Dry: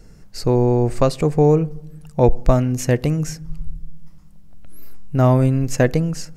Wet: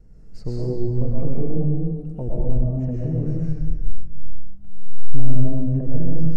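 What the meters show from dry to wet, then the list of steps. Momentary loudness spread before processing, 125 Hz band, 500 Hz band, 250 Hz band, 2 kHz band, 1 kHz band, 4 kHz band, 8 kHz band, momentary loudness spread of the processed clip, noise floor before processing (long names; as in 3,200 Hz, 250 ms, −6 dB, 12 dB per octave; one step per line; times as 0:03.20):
19 LU, −4.0 dB, −12.5 dB, −5.5 dB, below −25 dB, below −20 dB, below −15 dB, below −25 dB, 9 LU, −43 dBFS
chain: treble cut that deepens with the level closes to 380 Hz, closed at −12.5 dBFS
brickwall limiter −12 dBFS, peak gain reduction 8 dB
low-shelf EQ 160 Hz +7 dB
comb and all-pass reverb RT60 1.6 s, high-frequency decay 0.95×, pre-delay 80 ms, DRR −6 dB
pitch vibrato 3.3 Hz 34 cents
tilt shelving filter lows +5.5 dB, about 1,100 Hz
level −15.5 dB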